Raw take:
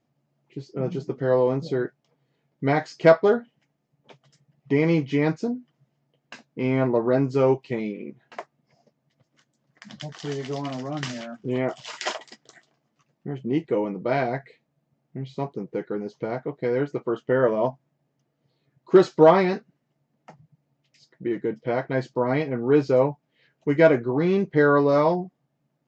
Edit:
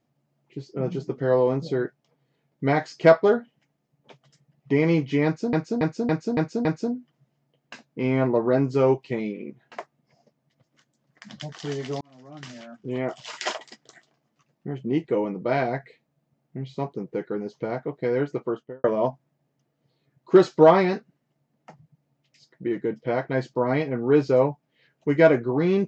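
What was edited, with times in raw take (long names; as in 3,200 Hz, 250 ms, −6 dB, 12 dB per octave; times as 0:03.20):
0:05.25–0:05.53: repeat, 6 plays
0:10.61–0:11.97: fade in
0:17.00–0:17.44: fade out and dull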